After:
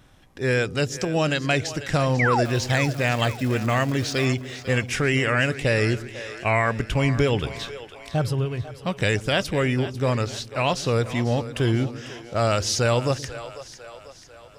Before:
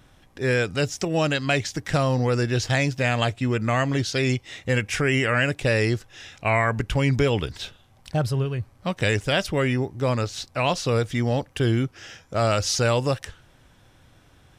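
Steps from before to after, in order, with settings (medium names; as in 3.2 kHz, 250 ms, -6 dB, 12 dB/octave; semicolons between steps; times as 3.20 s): 2.19–2.44 s: painted sound fall 540–2400 Hz -22 dBFS; 2.44–4.24 s: crackle 560 per s -31 dBFS; two-band feedback delay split 390 Hz, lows 126 ms, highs 495 ms, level -13.5 dB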